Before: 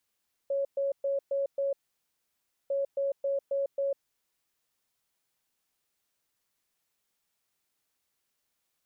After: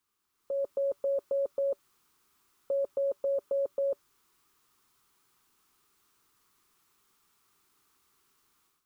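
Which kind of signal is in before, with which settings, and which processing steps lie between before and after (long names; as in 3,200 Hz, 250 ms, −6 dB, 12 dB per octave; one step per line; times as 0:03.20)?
beeps in groups sine 554 Hz, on 0.15 s, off 0.12 s, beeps 5, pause 0.97 s, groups 2, −26 dBFS
drawn EQ curve 230 Hz 0 dB, 400 Hz +4 dB, 570 Hz −12 dB, 1,200 Hz +8 dB, 1,700 Hz −3 dB
automatic gain control gain up to 11.5 dB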